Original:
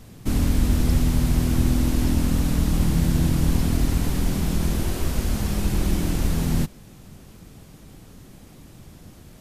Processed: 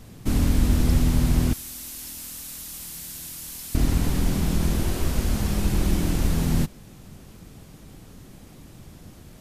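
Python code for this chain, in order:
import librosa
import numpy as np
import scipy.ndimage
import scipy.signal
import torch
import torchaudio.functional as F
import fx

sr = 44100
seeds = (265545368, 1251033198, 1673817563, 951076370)

y = fx.pre_emphasis(x, sr, coefficient=0.97, at=(1.53, 3.75))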